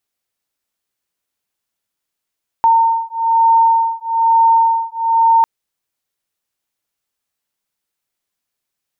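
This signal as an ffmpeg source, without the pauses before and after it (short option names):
-f lavfi -i "aevalsrc='0.224*(sin(2*PI*911*t)+sin(2*PI*912.1*t))':d=2.8:s=44100"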